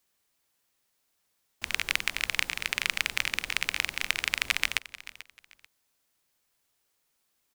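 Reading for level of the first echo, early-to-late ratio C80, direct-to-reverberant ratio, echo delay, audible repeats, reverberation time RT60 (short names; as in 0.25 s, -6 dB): -17.0 dB, none, none, 0.439 s, 2, none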